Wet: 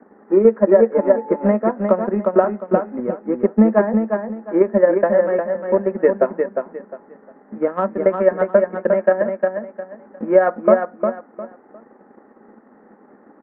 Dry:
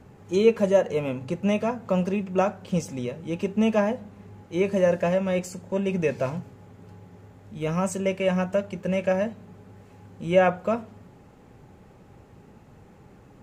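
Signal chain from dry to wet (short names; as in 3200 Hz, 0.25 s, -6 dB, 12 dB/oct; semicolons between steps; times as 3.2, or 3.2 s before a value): Chebyshev band-pass 210–1900 Hz, order 5; transient shaper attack +9 dB, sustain -5 dB; on a send: feedback echo 0.355 s, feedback 26%, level -5.5 dB; 0.94–1.47 on the sum: whine 870 Hz -37 dBFS; maximiser +5.5 dB; gain -1 dB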